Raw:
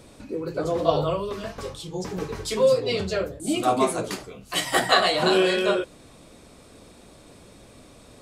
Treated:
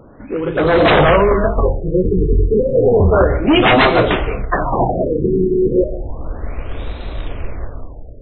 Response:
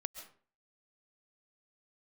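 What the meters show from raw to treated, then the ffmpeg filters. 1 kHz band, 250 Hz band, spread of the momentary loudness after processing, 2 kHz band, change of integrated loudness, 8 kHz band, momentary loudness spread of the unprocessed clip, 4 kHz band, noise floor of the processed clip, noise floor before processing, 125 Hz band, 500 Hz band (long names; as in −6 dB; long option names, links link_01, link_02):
+9.0 dB, +12.0 dB, 18 LU, +9.0 dB, +9.5 dB, below −40 dB, 14 LU, +3.0 dB, −33 dBFS, −50 dBFS, +16.0 dB, +10.0 dB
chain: -filter_complex "[0:a]asubboost=boost=11.5:cutoff=55,aeval=exprs='0.075*(abs(mod(val(0)/0.075+3,4)-2)-1)':channel_layout=same,dynaudnorm=framelen=110:gausssize=11:maxgain=11.5dB,acrusher=bits=3:mode=log:mix=0:aa=0.000001,acontrast=80,asplit=2[link_01][link_02];[1:a]atrim=start_sample=2205,asetrate=48510,aresample=44100,lowpass=5300[link_03];[link_02][link_03]afir=irnorm=-1:irlink=0,volume=6dB[link_04];[link_01][link_04]amix=inputs=2:normalize=0,afftfilt=real='re*lt(b*sr/1024,450*pow(4200/450,0.5+0.5*sin(2*PI*0.32*pts/sr)))':imag='im*lt(b*sr/1024,450*pow(4200/450,0.5+0.5*sin(2*PI*0.32*pts/sr)))':win_size=1024:overlap=0.75,volume=-7.5dB"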